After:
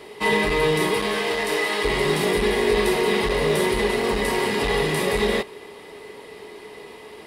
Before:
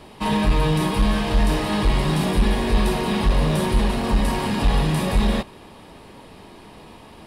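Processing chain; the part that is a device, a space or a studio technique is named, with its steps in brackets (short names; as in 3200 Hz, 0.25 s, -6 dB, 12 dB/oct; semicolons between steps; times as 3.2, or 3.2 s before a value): inside a helmet (high shelf 4500 Hz -8 dB; small resonant body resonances 420/2000 Hz, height 17 dB, ringing for 55 ms); 0.96–1.83 HPF 200 Hz -> 730 Hz 6 dB/oct; tilt +3 dB/oct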